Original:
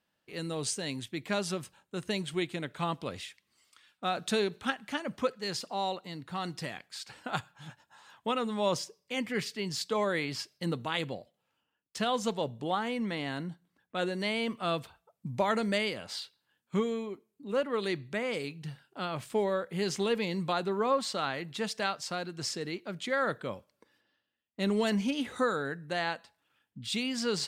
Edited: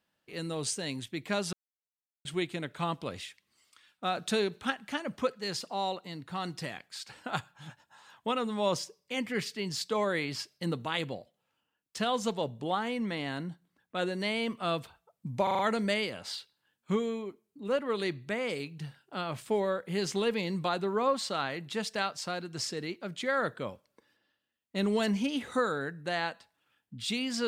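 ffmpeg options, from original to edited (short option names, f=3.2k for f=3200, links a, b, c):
-filter_complex "[0:a]asplit=7[a][b][c][d][e][f][g];[a]atrim=end=1.53,asetpts=PTS-STARTPTS,afade=t=out:st=1.526:d=0.004:c=hsin[h];[b]atrim=start=1.53:end=2.25,asetpts=PTS-STARTPTS,volume=0[i];[c]atrim=start=2.25:end=15.472,asetpts=PTS-STARTPTS,afade=t=in:d=0.004:c=hsin[j];[d]atrim=start=15.428:end=15.472[k];[e]atrim=start=15.428:end=15.472[l];[f]atrim=start=15.428:end=15.472[m];[g]atrim=start=15.428[n];[h][i][j]concat=n=3:v=0:a=1[o];[o][k]acrossfade=d=0.004:c1=hsin:c2=hsin[p];[p][l]acrossfade=d=0.004:c1=hsin:c2=hsin[q];[q][m]acrossfade=d=0.004:c1=hsin:c2=hsin[r];[r][n]acrossfade=d=0.004:c1=hsin:c2=hsin"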